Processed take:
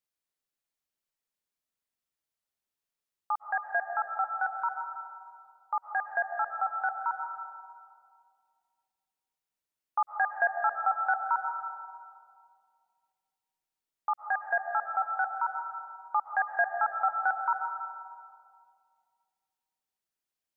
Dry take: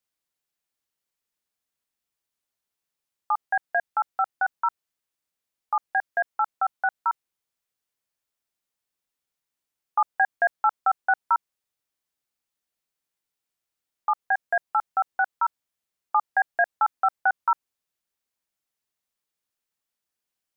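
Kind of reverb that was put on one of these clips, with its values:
comb and all-pass reverb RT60 2.2 s, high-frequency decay 0.3×, pre-delay 95 ms, DRR 4.5 dB
level −6 dB

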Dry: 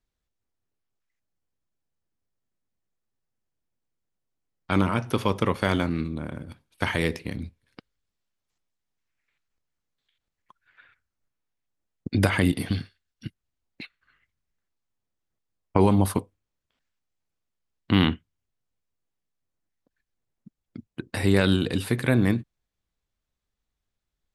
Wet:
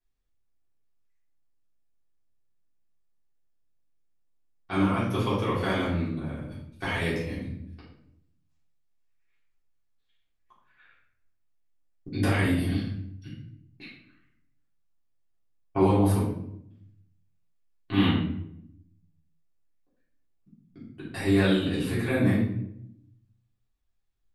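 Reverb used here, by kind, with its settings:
rectangular room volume 160 cubic metres, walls mixed, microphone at 3.5 metres
level −14 dB

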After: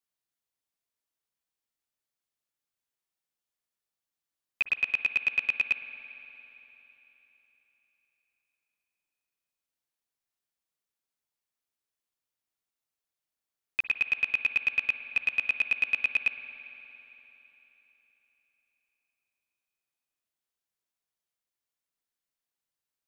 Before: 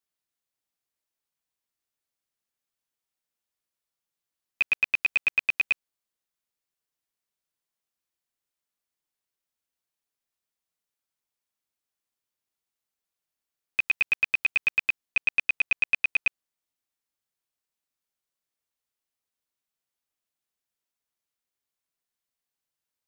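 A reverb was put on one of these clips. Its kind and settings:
spring reverb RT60 3.8 s, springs 48/57 ms, chirp 25 ms, DRR 8.5 dB
level −3 dB

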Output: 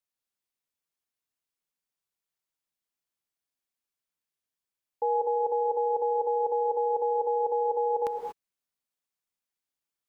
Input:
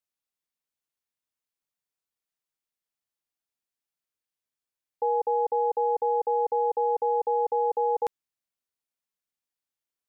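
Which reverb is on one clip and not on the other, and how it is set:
reverb whose tail is shaped and stops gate 260 ms rising, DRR 4 dB
level −1.5 dB

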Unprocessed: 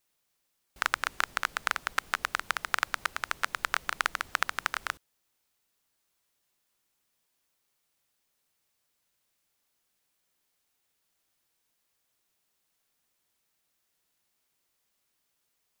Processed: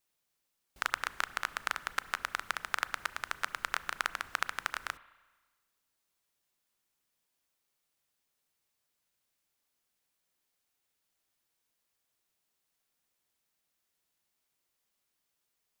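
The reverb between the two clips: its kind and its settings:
spring reverb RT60 1.3 s, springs 30/34 ms, chirp 30 ms, DRR 16 dB
level −4.5 dB

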